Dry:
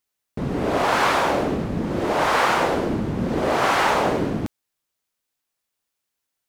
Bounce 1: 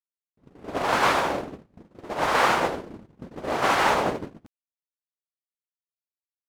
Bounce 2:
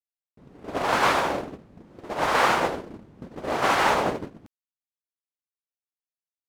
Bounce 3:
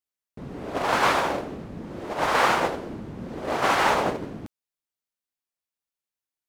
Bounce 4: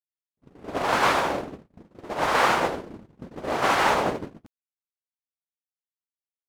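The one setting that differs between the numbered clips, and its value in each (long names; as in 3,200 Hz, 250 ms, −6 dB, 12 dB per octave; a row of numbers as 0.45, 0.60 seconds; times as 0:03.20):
noise gate, range: −39, −26, −12, −57 decibels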